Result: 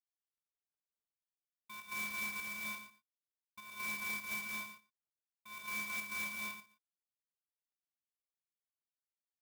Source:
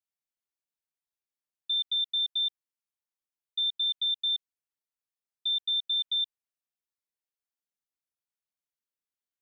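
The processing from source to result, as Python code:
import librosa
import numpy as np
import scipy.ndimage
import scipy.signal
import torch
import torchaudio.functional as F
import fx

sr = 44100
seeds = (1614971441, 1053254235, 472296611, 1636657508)

y = scipy.signal.medfilt(x, 25)
y = scipy.signal.sosfilt(scipy.signal.butter(4, 3500.0, 'lowpass', fs=sr, output='sos'), y)
y = fx.echo_feedback(y, sr, ms=116, feedback_pct=16, wet_db=-9)
y = fx.rev_gated(y, sr, seeds[0], gate_ms=320, shape='rising', drr_db=-7.0)
y = fx.volume_shaper(y, sr, bpm=100, per_beat=1, depth_db=-6, release_ms=110.0, shape='slow start')
y = fx.clock_jitter(y, sr, seeds[1], jitter_ms=0.033)
y = y * librosa.db_to_amplitude(2.5)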